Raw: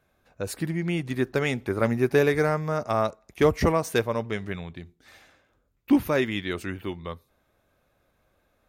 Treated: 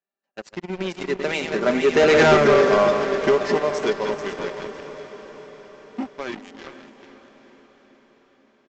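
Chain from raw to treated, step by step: regenerating reverse delay 0.254 s, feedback 70%, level -7.5 dB; Doppler pass-by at 2.32, 29 m/s, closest 4.7 m; HPF 220 Hz 24 dB/oct; comb 5.1 ms, depth 55%; sample leveller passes 1; in parallel at +2 dB: compressor, threshold -44 dBFS, peak gain reduction 24.5 dB; on the sum: sample leveller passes 3; on a send: diffused feedback echo 0.457 s, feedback 62%, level -13 dB; on the sum: downsampling 16000 Hz

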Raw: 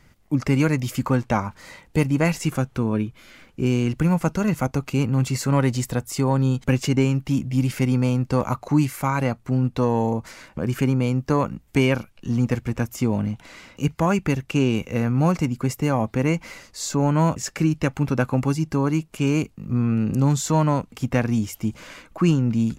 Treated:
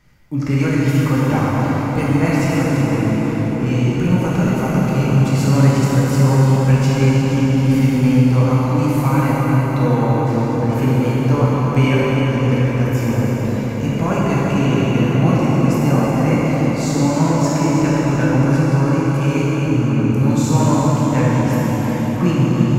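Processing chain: bell 8900 Hz -3.5 dB 0.4 oct; on a send: darkening echo 0.344 s, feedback 78%, low-pass 3500 Hz, level -7 dB; on the sum: plate-style reverb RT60 4.7 s, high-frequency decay 0.75×, DRR -7.5 dB; gain -3.5 dB

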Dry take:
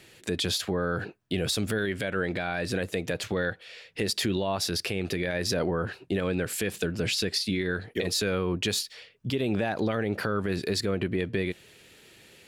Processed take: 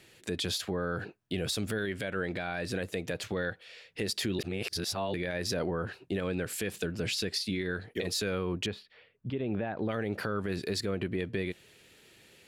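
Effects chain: 4.39–5.14 reverse; 8.66–9.89 air absorption 460 m; gain -4.5 dB

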